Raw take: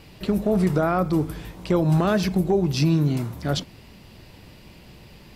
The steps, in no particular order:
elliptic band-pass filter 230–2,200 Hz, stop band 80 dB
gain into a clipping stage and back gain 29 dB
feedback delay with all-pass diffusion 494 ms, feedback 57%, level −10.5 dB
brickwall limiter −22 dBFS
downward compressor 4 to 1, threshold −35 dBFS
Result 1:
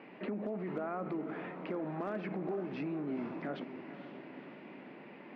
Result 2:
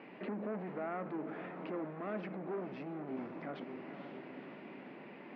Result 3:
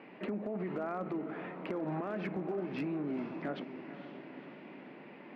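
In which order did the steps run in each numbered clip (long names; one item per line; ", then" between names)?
brickwall limiter, then elliptic band-pass filter, then downward compressor, then gain into a clipping stage and back, then feedback delay with all-pass diffusion
brickwall limiter, then gain into a clipping stage and back, then feedback delay with all-pass diffusion, then downward compressor, then elliptic band-pass filter
elliptic band-pass filter, then brickwall limiter, then downward compressor, then feedback delay with all-pass diffusion, then gain into a clipping stage and back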